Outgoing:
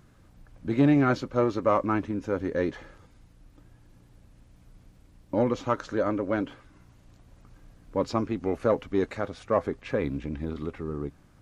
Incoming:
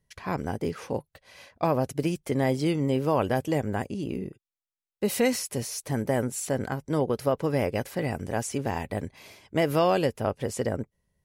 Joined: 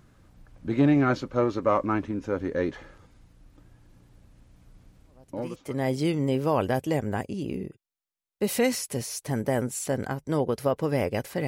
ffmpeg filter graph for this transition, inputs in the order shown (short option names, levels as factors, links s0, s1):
-filter_complex "[0:a]apad=whole_dur=11.47,atrim=end=11.47,atrim=end=5.96,asetpts=PTS-STARTPTS[s0];[1:a]atrim=start=1.63:end=8.08,asetpts=PTS-STARTPTS[s1];[s0][s1]acrossfade=d=0.94:c1=qua:c2=qua"